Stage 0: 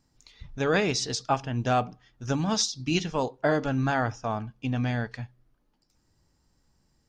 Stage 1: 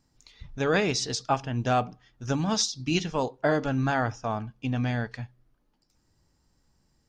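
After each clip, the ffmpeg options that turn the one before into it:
ffmpeg -i in.wav -af anull out.wav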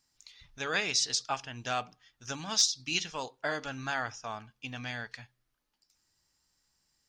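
ffmpeg -i in.wav -af "tiltshelf=frequency=970:gain=-9.5,volume=7.5dB,asoftclip=hard,volume=-7.5dB,volume=-7dB" out.wav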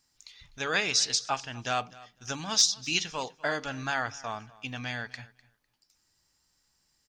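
ffmpeg -i in.wav -af "aecho=1:1:251|502:0.0891|0.0143,volume=3dB" out.wav

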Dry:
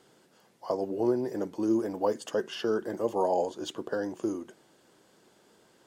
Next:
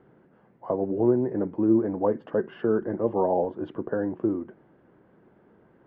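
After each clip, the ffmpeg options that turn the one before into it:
ffmpeg -i in.wav -af "lowpass=frequency=2000:width=0.5412,lowpass=frequency=2000:width=1.3066,lowshelf=frequency=300:gain=12" out.wav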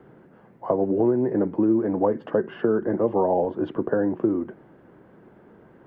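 ffmpeg -i in.wav -filter_complex "[0:a]acrossover=split=130|1800[link_01][link_02][link_03];[link_01]acompressor=threshold=-49dB:ratio=4[link_04];[link_02]acompressor=threshold=-25dB:ratio=4[link_05];[link_03]acompressor=threshold=-54dB:ratio=4[link_06];[link_04][link_05][link_06]amix=inputs=3:normalize=0,volume=7dB" out.wav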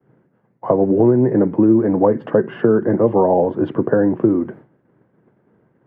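ffmpeg -i in.wav -af "agate=range=-33dB:threshold=-40dB:ratio=3:detection=peak,equalizer=frequency=125:width_type=o:width=1:gain=11,equalizer=frequency=250:width_type=o:width=1:gain=4,equalizer=frequency=500:width_type=o:width=1:gain=4,equalizer=frequency=1000:width_type=o:width=1:gain=3,equalizer=frequency=2000:width_type=o:width=1:gain=5,volume=1.5dB" out.wav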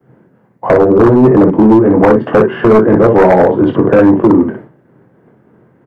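ffmpeg -i in.wav -af "aecho=1:1:23|60:0.501|0.562,aeval=exprs='0.447*(abs(mod(val(0)/0.447+3,4)-2)-1)':channel_layout=same,acontrast=73,volume=2dB" out.wav

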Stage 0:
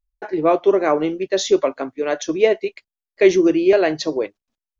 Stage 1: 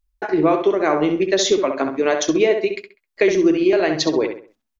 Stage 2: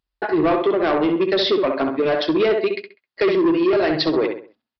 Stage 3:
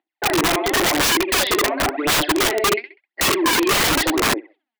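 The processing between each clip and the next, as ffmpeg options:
ffmpeg -i in.wav -filter_complex "[0:a]equalizer=frequency=520:width_type=o:width=0.66:gain=-4.5,acompressor=threshold=-21dB:ratio=5,asplit=2[link_01][link_02];[link_02]adelay=66,lowpass=frequency=3000:poles=1,volume=-6dB,asplit=2[link_03][link_04];[link_04]adelay=66,lowpass=frequency=3000:poles=1,volume=0.35,asplit=2[link_05][link_06];[link_06]adelay=66,lowpass=frequency=3000:poles=1,volume=0.35,asplit=2[link_07][link_08];[link_08]adelay=66,lowpass=frequency=3000:poles=1,volume=0.35[link_09];[link_03][link_05][link_07][link_09]amix=inputs=4:normalize=0[link_10];[link_01][link_10]amix=inputs=2:normalize=0,volume=7dB" out.wav
ffmpeg -i in.wav -af "highpass=110,bandreject=frequency=2300:width=17,aresample=11025,asoftclip=type=tanh:threshold=-16dB,aresample=44100,volume=3dB" out.wav
ffmpeg -i in.wav -af "aphaser=in_gain=1:out_gain=1:delay=4.9:decay=0.75:speed=0.93:type=sinusoidal,highpass=frequency=290:width=0.5412,highpass=frequency=290:width=1.3066,equalizer=frequency=320:width_type=q:width=4:gain=10,equalizer=frequency=470:width_type=q:width=4:gain=-7,equalizer=frequency=760:width_type=q:width=4:gain=9,equalizer=frequency=1200:width_type=q:width=4:gain=-6,equalizer=frequency=2000:width_type=q:width=4:gain=8,lowpass=frequency=3500:width=0.5412,lowpass=frequency=3500:width=1.3066,aeval=exprs='(mod(3.16*val(0)+1,2)-1)/3.16':channel_layout=same,volume=-2.5dB" out.wav

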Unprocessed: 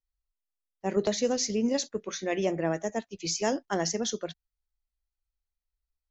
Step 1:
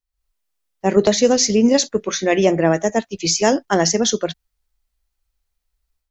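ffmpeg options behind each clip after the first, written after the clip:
ffmpeg -i in.wav -af "dynaudnorm=framelen=120:gausssize=3:maxgain=11dB,volume=2dB" out.wav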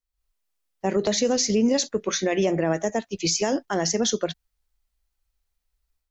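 ffmpeg -i in.wav -af "alimiter=limit=-10.5dB:level=0:latency=1:release=104,volume=-2.5dB" out.wav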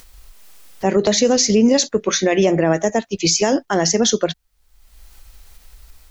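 ffmpeg -i in.wav -af "acompressor=mode=upward:threshold=-28dB:ratio=2.5,volume=7dB" out.wav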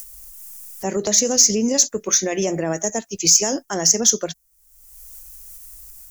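ffmpeg -i in.wav -af "aexciter=amount=5.8:drive=7.2:freq=5600,volume=-7dB" out.wav

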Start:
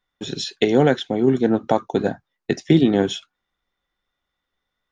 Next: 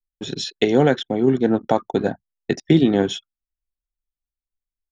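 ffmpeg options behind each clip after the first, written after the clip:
ffmpeg -i in.wav -af "anlmdn=1.58" out.wav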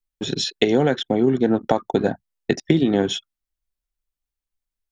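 ffmpeg -i in.wav -af "acompressor=threshold=-17dB:ratio=6,volume=3.5dB" out.wav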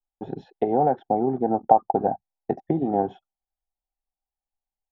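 ffmpeg -i in.wav -af "lowpass=frequency=790:width_type=q:width=8.7,volume=-8dB" out.wav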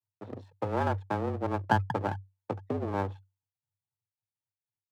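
ffmpeg -i in.wav -af "aeval=exprs='max(val(0),0)':channel_layout=same,afreqshift=96,volume=-5.5dB" out.wav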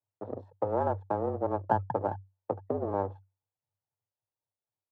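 ffmpeg -i in.wav -filter_complex "[0:a]firequalizer=gain_entry='entry(200,0);entry(550,9);entry(2300,-14)':delay=0.05:min_phase=1,asplit=2[link_01][link_02];[link_02]acompressor=threshold=-31dB:ratio=6,volume=2dB[link_03];[link_01][link_03]amix=inputs=2:normalize=0,volume=-7.5dB" out.wav

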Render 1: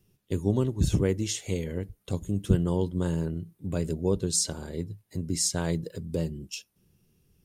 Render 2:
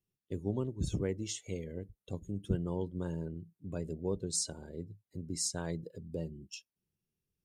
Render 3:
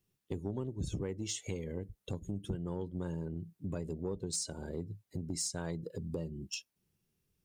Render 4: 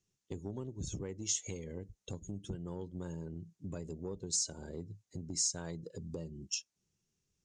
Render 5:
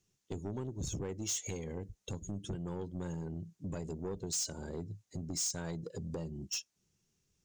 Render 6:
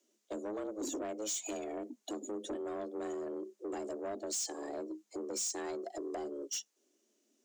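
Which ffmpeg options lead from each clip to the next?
ffmpeg -i in.wav -af "afftdn=noise_reduction=13:noise_floor=-42,lowshelf=frequency=220:gain=-3.5,volume=-7.5dB" out.wav
ffmpeg -i in.wav -af "acompressor=threshold=-42dB:ratio=4,asoftclip=type=tanh:threshold=-33dB,volume=8dB" out.wav
ffmpeg -i in.wav -af "lowpass=frequency=6600:width_type=q:width=3.8,volume=-4dB" out.wav
ffmpeg -i in.wav -af "asoftclip=type=tanh:threshold=-36dB,volume=4.5dB" out.wav
ffmpeg -i in.wav -af "afreqshift=210,asoftclip=type=tanh:threshold=-34dB,volume=2dB" out.wav

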